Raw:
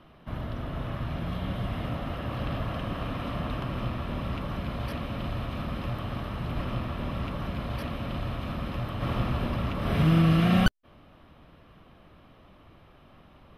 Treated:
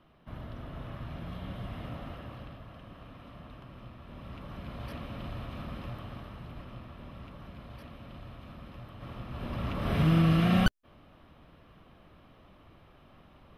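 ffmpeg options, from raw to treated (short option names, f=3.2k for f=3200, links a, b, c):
-af "volume=13dB,afade=t=out:st=2.05:d=0.52:silence=0.375837,afade=t=in:st=3.99:d=0.96:silence=0.334965,afade=t=out:st=5.74:d=0.91:silence=0.446684,afade=t=in:st=9.28:d=0.48:silence=0.266073"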